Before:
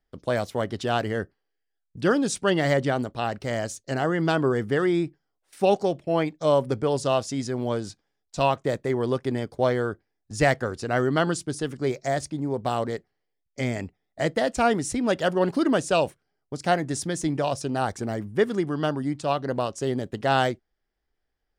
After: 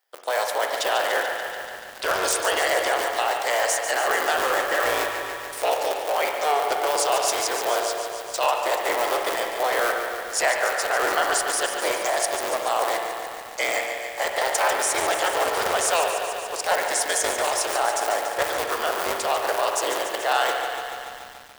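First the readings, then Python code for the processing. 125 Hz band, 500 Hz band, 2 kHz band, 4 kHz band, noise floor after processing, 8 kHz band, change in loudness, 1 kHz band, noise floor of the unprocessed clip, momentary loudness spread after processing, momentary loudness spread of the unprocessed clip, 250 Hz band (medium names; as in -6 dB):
under -20 dB, 0.0 dB, +7.0 dB, +8.0 dB, -38 dBFS, +11.5 dB, +2.0 dB, +5.5 dB, -79 dBFS, 6 LU, 8 LU, -14.0 dB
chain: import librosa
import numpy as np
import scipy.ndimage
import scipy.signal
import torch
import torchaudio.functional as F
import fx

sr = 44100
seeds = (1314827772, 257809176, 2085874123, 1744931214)

p1 = fx.cycle_switch(x, sr, every=3, mode='inverted')
p2 = scipy.signal.sosfilt(scipy.signal.butter(4, 590.0, 'highpass', fs=sr, output='sos'), p1)
p3 = fx.high_shelf(p2, sr, hz=9100.0, db=10.5)
p4 = fx.over_compress(p3, sr, threshold_db=-31.0, ratio=-0.5)
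p5 = p3 + (p4 * 10.0 ** (0.0 / 20.0))
p6 = 10.0 ** (-9.0 / 20.0) * (np.abs((p5 / 10.0 ** (-9.0 / 20.0) + 3.0) % 4.0 - 2.0) - 1.0)
p7 = fx.rev_spring(p6, sr, rt60_s=1.7, pass_ms=(45, 58), chirp_ms=75, drr_db=4.0)
y = fx.echo_crushed(p7, sr, ms=144, feedback_pct=80, bits=7, wet_db=-8.5)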